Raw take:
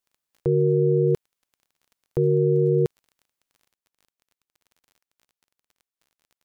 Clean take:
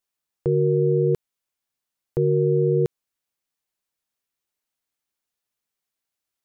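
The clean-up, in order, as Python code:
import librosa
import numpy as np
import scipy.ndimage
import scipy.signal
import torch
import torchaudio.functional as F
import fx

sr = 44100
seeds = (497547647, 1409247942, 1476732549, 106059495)

y = fx.fix_declick_ar(x, sr, threshold=6.5)
y = fx.gain(y, sr, db=fx.steps((0.0, 0.0), (3.73, 8.5)))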